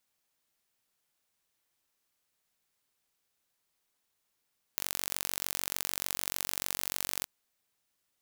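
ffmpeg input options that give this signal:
-f lavfi -i "aevalsrc='0.631*eq(mod(n,944),0)*(0.5+0.5*eq(mod(n,1888),0))':d=2.48:s=44100"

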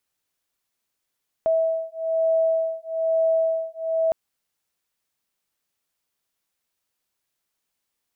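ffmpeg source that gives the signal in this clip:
-f lavfi -i "aevalsrc='0.075*(sin(2*PI*650*t)+sin(2*PI*651.1*t))':d=2.66:s=44100"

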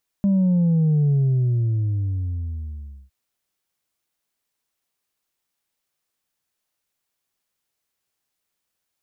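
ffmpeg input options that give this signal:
-f lavfi -i "aevalsrc='0.168*clip((2.86-t)/1.99,0,1)*tanh(1.26*sin(2*PI*200*2.86/log(65/200)*(exp(log(65/200)*t/2.86)-1)))/tanh(1.26)':d=2.86:s=44100"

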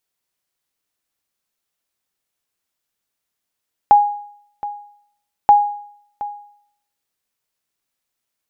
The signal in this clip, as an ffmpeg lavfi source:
-f lavfi -i "aevalsrc='0.708*(sin(2*PI*824*mod(t,1.58))*exp(-6.91*mod(t,1.58)/0.64)+0.15*sin(2*PI*824*max(mod(t,1.58)-0.72,0))*exp(-6.91*max(mod(t,1.58)-0.72,0)/0.64))':d=3.16:s=44100"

